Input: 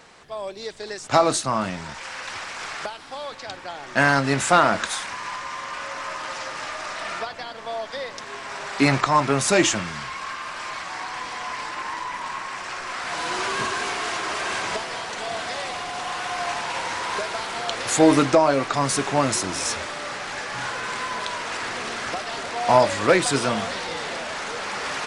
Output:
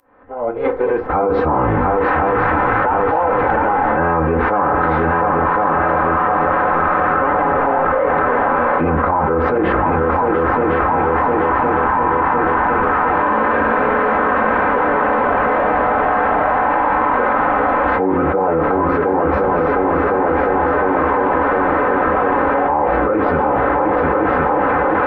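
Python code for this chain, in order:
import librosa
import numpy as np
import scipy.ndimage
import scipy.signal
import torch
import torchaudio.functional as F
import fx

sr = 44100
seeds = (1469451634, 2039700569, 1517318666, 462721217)

y = fx.fade_in_head(x, sr, length_s=6.4)
y = scipy.signal.sosfilt(scipy.signal.butter(4, 1500.0, 'lowpass', fs=sr, output='sos'), y)
y = fx.notch(y, sr, hz=1100.0, q=12.0)
y = y + 0.54 * np.pad(y, (int(2.3 * sr / 1000.0), 0))[:len(y)]
y = fx.dynamic_eq(y, sr, hz=180.0, q=2.1, threshold_db=-41.0, ratio=4.0, max_db=-4)
y = fx.pitch_keep_formants(y, sr, semitones=-9.0)
y = fx.echo_heads(y, sr, ms=353, heads='second and third', feedback_pct=66, wet_db=-9.0)
y = fx.rev_fdn(y, sr, rt60_s=0.48, lf_ratio=0.8, hf_ratio=0.6, size_ms=20.0, drr_db=7.5)
y = fx.env_flatten(y, sr, amount_pct=100)
y = F.gain(torch.from_numpy(y), -5.0).numpy()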